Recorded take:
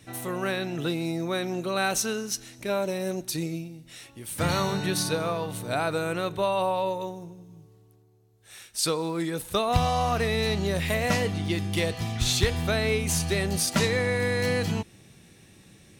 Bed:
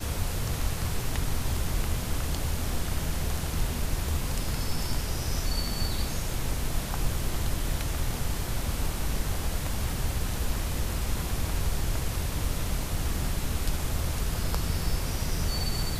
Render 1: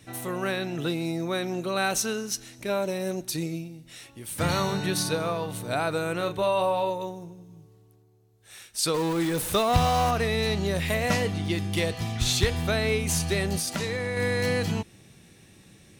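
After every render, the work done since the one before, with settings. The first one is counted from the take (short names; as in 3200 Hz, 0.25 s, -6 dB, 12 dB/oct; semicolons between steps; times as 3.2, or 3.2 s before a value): 6.17–6.9 doubler 34 ms -8 dB; 8.94–10.11 zero-crossing step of -28.5 dBFS; 13.57–14.17 compressor, threshold -25 dBFS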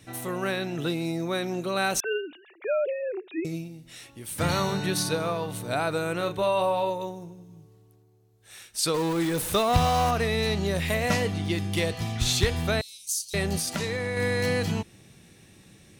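2–3.45 sine-wave speech; 12.81–13.34 inverse Chebyshev high-pass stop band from 1800 Hz, stop band 50 dB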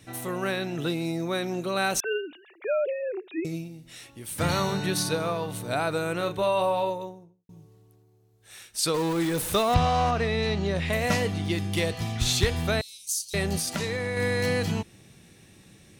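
6.8–7.49 studio fade out; 9.74–10.93 air absorption 85 m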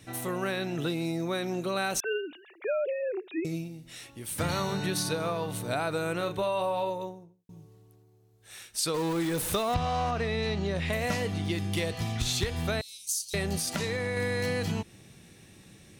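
compressor 3:1, threshold -27 dBFS, peak gain reduction 9 dB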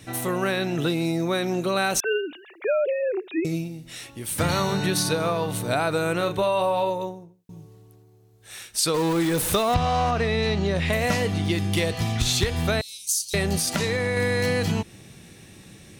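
gain +6.5 dB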